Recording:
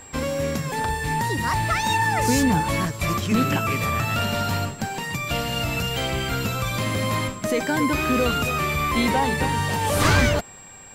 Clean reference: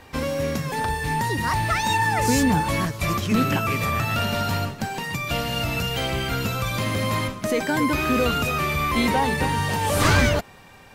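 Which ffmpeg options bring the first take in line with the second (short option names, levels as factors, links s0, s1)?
-af "bandreject=f=7600:w=30"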